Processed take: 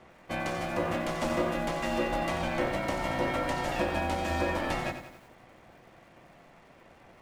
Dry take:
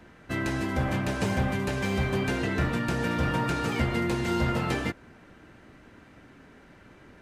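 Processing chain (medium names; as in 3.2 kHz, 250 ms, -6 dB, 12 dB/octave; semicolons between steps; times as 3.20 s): ring modulator 430 Hz; hum notches 50/100/150/200/250/300 Hz; bit-crushed delay 90 ms, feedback 55%, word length 9-bit, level -9.5 dB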